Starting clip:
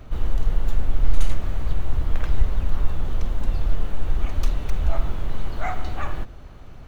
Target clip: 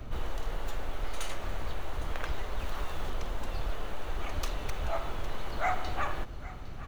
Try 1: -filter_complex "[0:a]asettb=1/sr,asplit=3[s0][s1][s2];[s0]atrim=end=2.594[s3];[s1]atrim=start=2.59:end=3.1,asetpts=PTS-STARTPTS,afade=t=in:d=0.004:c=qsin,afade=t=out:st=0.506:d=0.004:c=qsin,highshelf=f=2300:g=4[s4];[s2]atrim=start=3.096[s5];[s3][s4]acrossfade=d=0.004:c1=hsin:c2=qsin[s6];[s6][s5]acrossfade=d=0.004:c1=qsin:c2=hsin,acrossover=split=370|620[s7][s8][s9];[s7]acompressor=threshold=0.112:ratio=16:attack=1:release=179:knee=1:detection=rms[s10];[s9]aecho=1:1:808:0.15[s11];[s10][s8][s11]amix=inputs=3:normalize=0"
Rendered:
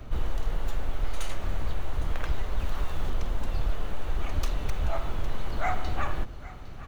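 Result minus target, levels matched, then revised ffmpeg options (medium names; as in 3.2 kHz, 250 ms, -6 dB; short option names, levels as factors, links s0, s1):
compression: peak gain reduction -6.5 dB
-filter_complex "[0:a]asettb=1/sr,asplit=3[s0][s1][s2];[s0]atrim=end=2.594[s3];[s1]atrim=start=2.59:end=3.1,asetpts=PTS-STARTPTS,afade=t=in:d=0.004:c=qsin,afade=t=out:st=0.506:d=0.004:c=qsin,highshelf=f=2300:g=4[s4];[s2]atrim=start=3.096[s5];[s3][s4]acrossfade=d=0.004:c1=hsin:c2=qsin[s6];[s6][s5]acrossfade=d=0.004:c1=qsin:c2=hsin,acrossover=split=370|620[s7][s8][s9];[s7]acompressor=threshold=0.0501:ratio=16:attack=1:release=179:knee=1:detection=rms[s10];[s9]aecho=1:1:808:0.15[s11];[s10][s8][s11]amix=inputs=3:normalize=0"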